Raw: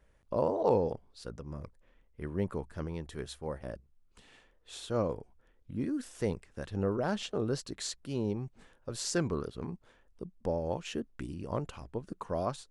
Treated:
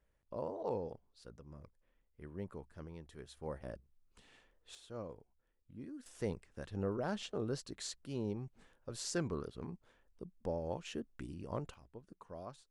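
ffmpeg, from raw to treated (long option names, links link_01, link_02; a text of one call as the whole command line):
ffmpeg -i in.wav -af "asetnsamples=nb_out_samples=441:pad=0,asendcmd='3.37 volume volume -5dB;4.75 volume volume -14.5dB;6.06 volume volume -6dB;11.74 volume volume -15dB',volume=-11.5dB" out.wav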